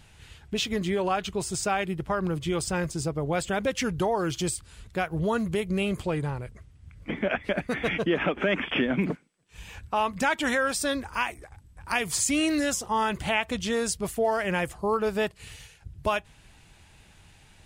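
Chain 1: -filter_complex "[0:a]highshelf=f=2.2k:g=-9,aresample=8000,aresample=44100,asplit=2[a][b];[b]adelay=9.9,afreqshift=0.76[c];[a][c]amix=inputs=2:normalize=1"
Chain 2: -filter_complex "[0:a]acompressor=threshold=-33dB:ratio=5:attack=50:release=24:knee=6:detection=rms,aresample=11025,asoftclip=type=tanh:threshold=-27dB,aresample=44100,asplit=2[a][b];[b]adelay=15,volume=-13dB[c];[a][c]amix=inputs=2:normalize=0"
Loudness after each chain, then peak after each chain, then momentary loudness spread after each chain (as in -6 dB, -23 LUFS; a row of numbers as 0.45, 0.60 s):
-32.5, -34.5 LUFS; -16.0, -24.0 dBFS; 8, 12 LU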